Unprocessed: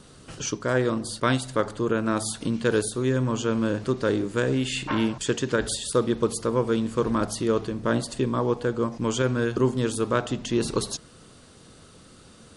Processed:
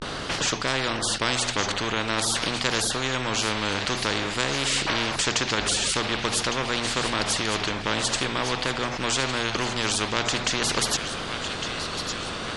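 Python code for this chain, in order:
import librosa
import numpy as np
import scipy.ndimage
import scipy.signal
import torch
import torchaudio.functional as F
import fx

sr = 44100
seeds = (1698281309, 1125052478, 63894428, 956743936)

p1 = 10.0 ** (-19.5 / 20.0) * np.tanh(x / 10.0 ** (-19.5 / 20.0))
p2 = x + F.gain(torch.from_numpy(p1), -6.0).numpy()
p3 = fx.vibrato(p2, sr, rate_hz=0.48, depth_cents=94.0)
p4 = scipy.signal.sosfilt(scipy.signal.butter(2, 3800.0, 'lowpass', fs=sr, output='sos'), p3)
p5 = fx.hum_notches(p4, sr, base_hz=60, count=2)
p6 = p5 + fx.echo_wet_highpass(p5, sr, ms=1157, feedback_pct=54, hz=2400.0, wet_db=-15.0, dry=0)
p7 = fx.spectral_comp(p6, sr, ratio=4.0)
y = F.gain(torch.from_numpy(p7), 2.0).numpy()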